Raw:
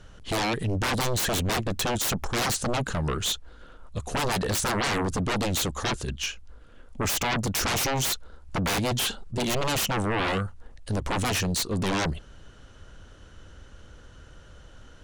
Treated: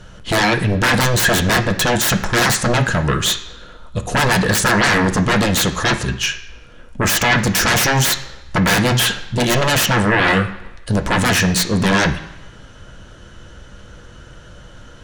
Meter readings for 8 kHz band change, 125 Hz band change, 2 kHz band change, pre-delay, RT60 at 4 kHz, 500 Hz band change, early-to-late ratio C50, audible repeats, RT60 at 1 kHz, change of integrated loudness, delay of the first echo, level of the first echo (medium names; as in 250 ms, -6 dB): +9.5 dB, +11.0 dB, +15.0 dB, 3 ms, 1.0 s, +10.0 dB, 11.5 dB, no echo, 1.1 s, +11.0 dB, no echo, no echo